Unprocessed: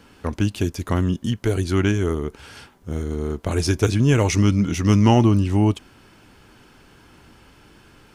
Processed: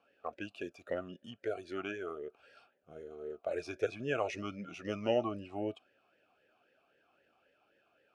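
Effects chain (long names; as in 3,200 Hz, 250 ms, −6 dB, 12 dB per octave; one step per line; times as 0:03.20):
noise reduction from a noise print of the clip's start 7 dB
formant filter swept between two vowels a-e 3.8 Hz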